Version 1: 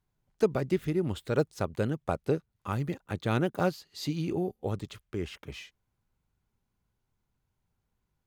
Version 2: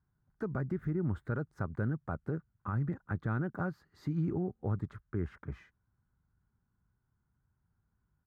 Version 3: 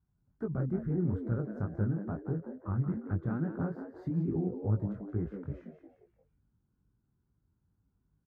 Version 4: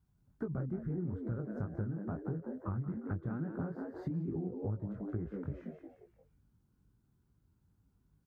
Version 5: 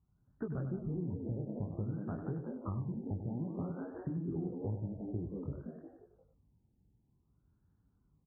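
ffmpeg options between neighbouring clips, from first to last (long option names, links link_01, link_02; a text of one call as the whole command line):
ffmpeg -i in.wav -af "firequalizer=gain_entry='entry(130,0);entry(500,-11);entry(1500,0);entry(2700,-27)':delay=0.05:min_phase=1,alimiter=level_in=5dB:limit=-24dB:level=0:latency=1:release=93,volume=-5dB,highpass=41,volume=4dB" out.wav
ffmpeg -i in.wav -filter_complex "[0:a]flanger=delay=17.5:depth=6.3:speed=2.3,tiltshelf=frequency=1200:gain=8,asplit=5[link_01][link_02][link_03][link_04][link_05];[link_02]adelay=176,afreqshift=95,volume=-10dB[link_06];[link_03]adelay=352,afreqshift=190,volume=-17.7dB[link_07];[link_04]adelay=528,afreqshift=285,volume=-25.5dB[link_08];[link_05]adelay=704,afreqshift=380,volume=-33.2dB[link_09];[link_01][link_06][link_07][link_08][link_09]amix=inputs=5:normalize=0,volume=-3dB" out.wav
ffmpeg -i in.wav -af "acompressor=threshold=-38dB:ratio=6,volume=3.5dB" out.wav
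ffmpeg -i in.wav -af "aecho=1:1:97:0.376,afftfilt=real='re*lt(b*sr/1024,910*pow(1900/910,0.5+0.5*sin(2*PI*0.55*pts/sr)))':imag='im*lt(b*sr/1024,910*pow(1900/910,0.5+0.5*sin(2*PI*0.55*pts/sr)))':win_size=1024:overlap=0.75,volume=-1dB" out.wav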